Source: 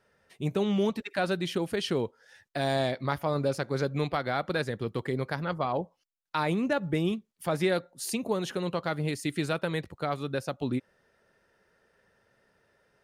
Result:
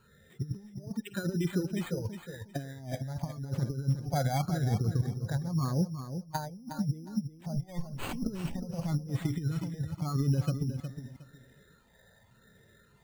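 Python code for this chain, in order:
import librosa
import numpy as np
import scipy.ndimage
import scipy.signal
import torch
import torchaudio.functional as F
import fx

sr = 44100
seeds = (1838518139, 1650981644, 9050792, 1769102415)

y = fx.lower_of_two(x, sr, delay_ms=0.38, at=(7.53, 8.65), fade=0.02)
y = fx.spec_gate(y, sr, threshold_db=-20, keep='strong')
y = fx.low_shelf(y, sr, hz=470.0, db=7.5)
y = fx.hpss(y, sr, part='percussive', gain_db=-14)
y = fx.bass_treble(y, sr, bass_db=-10, treble_db=-3, at=(0.74, 2.0))
y = fx.over_compress(y, sr, threshold_db=-32.0, ratio=-0.5)
y = fx.phaser_stages(y, sr, stages=8, low_hz=340.0, high_hz=1000.0, hz=0.89, feedback_pct=25)
y = np.repeat(y[::8], 8)[:len(y)]
y = fx.echo_feedback(y, sr, ms=362, feedback_pct=22, wet_db=-9)
y = F.gain(torch.from_numpy(y), 2.5).numpy()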